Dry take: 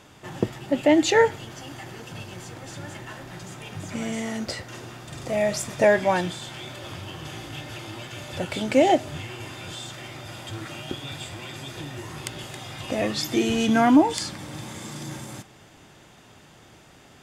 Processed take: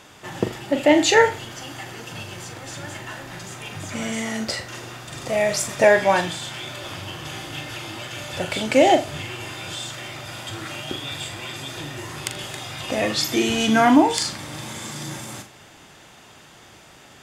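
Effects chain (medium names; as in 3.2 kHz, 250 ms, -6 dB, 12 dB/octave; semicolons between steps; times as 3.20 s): bass shelf 490 Hz -6.5 dB; flutter echo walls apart 7 m, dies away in 0.27 s; trim +5.5 dB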